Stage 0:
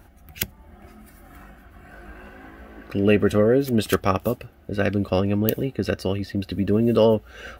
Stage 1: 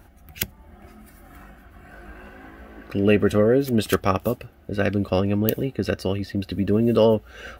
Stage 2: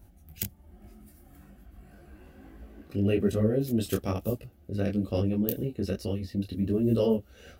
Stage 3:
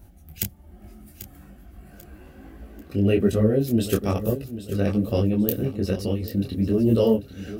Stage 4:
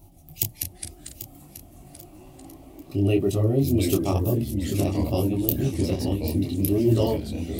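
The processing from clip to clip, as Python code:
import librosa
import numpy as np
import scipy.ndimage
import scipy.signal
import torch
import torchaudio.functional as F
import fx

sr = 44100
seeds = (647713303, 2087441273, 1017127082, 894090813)

y1 = x
y2 = fx.peak_eq(y1, sr, hz=1400.0, db=-13.0, octaves=2.5)
y2 = fx.detune_double(y2, sr, cents=40)
y3 = fx.echo_feedback(y2, sr, ms=791, feedback_pct=34, wet_db=-13)
y3 = y3 * 10.0 ** (5.5 / 20.0)
y4 = fx.fixed_phaser(y3, sr, hz=320.0, stages=8)
y4 = fx.echo_pitch(y4, sr, ms=120, semitones=-3, count=3, db_per_echo=-6.0)
y4 = y4 * 10.0 ** (3.0 / 20.0)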